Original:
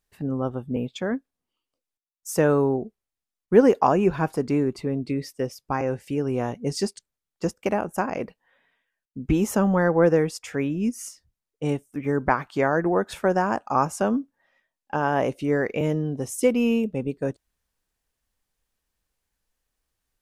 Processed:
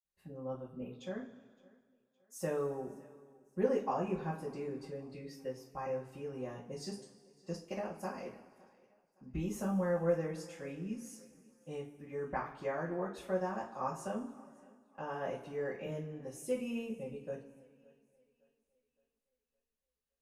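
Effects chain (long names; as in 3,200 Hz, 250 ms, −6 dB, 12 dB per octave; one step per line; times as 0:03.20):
0:07.45–0:08.24: parametric band 4,700 Hz +11 dB 0.46 octaves
feedback echo with a high-pass in the loop 564 ms, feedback 43%, high-pass 170 Hz, level −24 dB
convolution reverb, pre-delay 46 ms
level −2.5 dB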